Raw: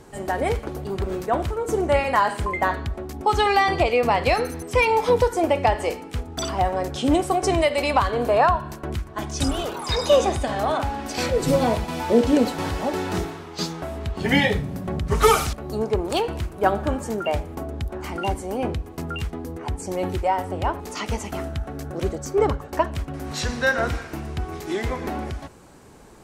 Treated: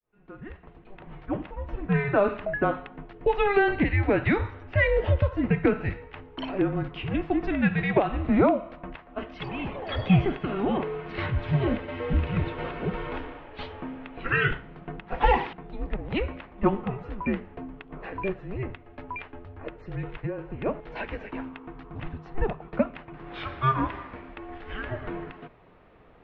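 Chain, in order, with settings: opening faded in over 2.23 s; mistuned SSB -400 Hz 450–3300 Hz; 18.62–20.66 compressor 12:1, threshold -26 dBFS, peak gain reduction 10.5 dB; gain -2 dB

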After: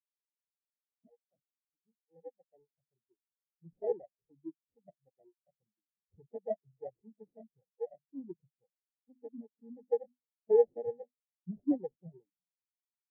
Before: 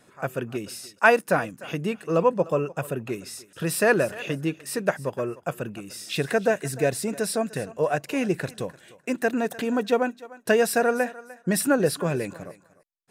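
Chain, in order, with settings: opening faded in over 4.23 s; notches 50/100/150/200/250 Hz; sample-and-hold 34×; spectral expander 4:1; gain -4 dB

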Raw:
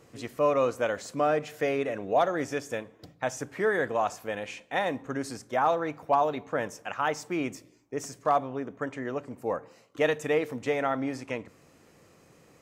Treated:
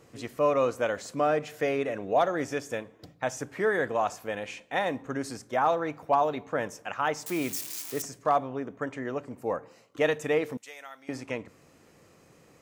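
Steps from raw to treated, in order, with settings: 7.26–8.02 switching spikes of -26.5 dBFS; 10.57–11.09 differentiator

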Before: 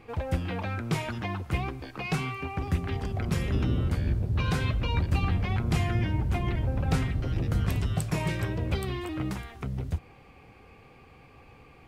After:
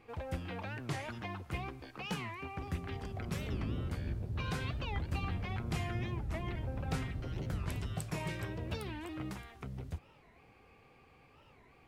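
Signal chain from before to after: low shelf 240 Hz -4 dB; record warp 45 rpm, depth 250 cents; gain -7.5 dB

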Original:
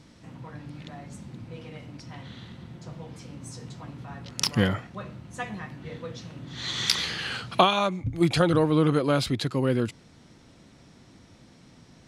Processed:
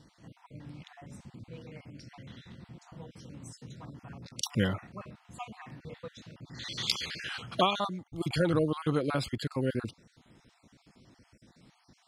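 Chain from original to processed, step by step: random spectral dropouts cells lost 35%; gain -5 dB

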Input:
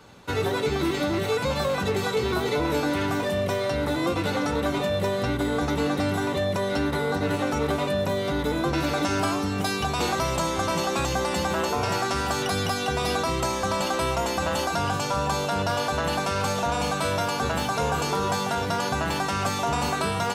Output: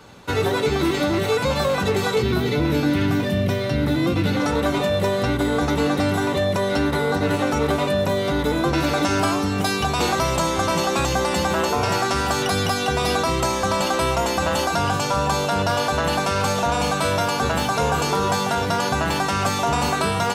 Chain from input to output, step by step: 2.22–4.4 graphic EQ 125/250/500/1000/8000 Hz +6/+4/-4/-7/-7 dB; gain +4.5 dB

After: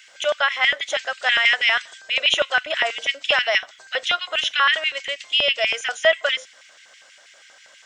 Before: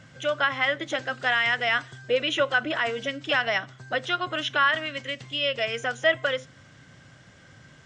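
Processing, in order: tilt +3.5 dB/oct; LFO high-pass square 6.2 Hz 600–2300 Hz

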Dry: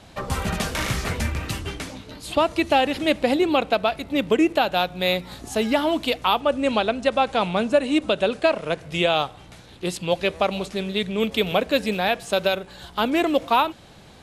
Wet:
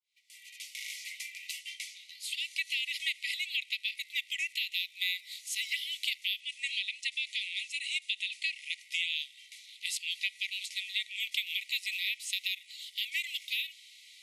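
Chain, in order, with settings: opening faded in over 2.93 s; brick-wall FIR high-pass 1900 Hz; compressor 3:1, threshold -30 dBFS, peak gain reduction 8 dB

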